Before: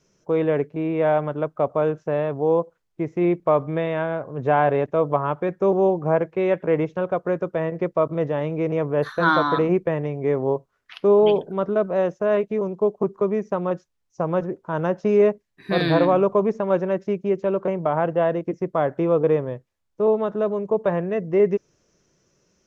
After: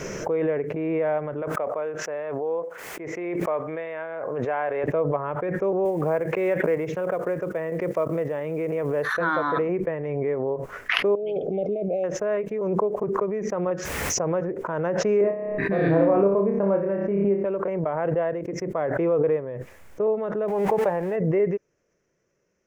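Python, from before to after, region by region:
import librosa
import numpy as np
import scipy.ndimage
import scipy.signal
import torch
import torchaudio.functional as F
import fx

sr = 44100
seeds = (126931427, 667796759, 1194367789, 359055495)

y = fx.chain(x, sr, fx.highpass(hz=630.0, slope=6),
    fx.sustainer(db_per_s=94.0), at=(1.42, 4.84))
y = fx.chain(y, sr, fx.highpass(hz=110.0, slope=12),
    fx.high_shelf(hz=4100.0, db=5.5),
    fx.quant_float(bits=4), at=(5.85, 9.14))
y = fx.chain(y, sr, fx.resample_bad(factor=3, down='none', up='filtered'),
    fx.over_compress(threshold_db=-22.0, ratio=-1.0),
    fx.brickwall_bandstop(low_hz=820.0, high_hz=2100.0), at=(11.15, 12.04))
y = fx.chain(y, sr, fx.highpass(hz=50.0, slope=12),
    fx.env_flatten(amount_pct=70), at=(13.66, 14.52))
y = fx.chain(y, sr, fx.lowpass(hz=1100.0, slope=6),
    fx.low_shelf(hz=330.0, db=5.5),
    fx.room_flutter(wall_m=5.2, rt60_s=0.42), at=(15.21, 17.45))
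y = fx.chain(y, sr, fx.zero_step(step_db=-36.0),
    fx.peak_eq(hz=820.0, db=15.0, octaves=0.25), at=(20.48, 21.16))
y = fx.graphic_eq(y, sr, hz=(500, 2000, 4000), db=(7, 9, -8))
y = fx.pre_swell(y, sr, db_per_s=23.0)
y = F.gain(torch.from_numpy(y), -10.5).numpy()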